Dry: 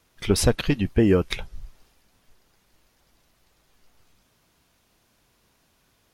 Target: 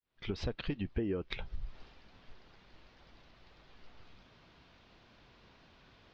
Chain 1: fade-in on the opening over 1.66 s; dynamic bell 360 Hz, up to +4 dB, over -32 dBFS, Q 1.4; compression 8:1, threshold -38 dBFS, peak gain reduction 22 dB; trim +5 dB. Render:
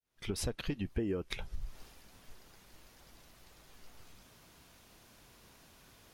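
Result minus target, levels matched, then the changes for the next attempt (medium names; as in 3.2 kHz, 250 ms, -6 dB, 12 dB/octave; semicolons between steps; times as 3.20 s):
8 kHz band +17.0 dB
add after dynamic bell: inverse Chebyshev low-pass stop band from 9.8 kHz, stop band 50 dB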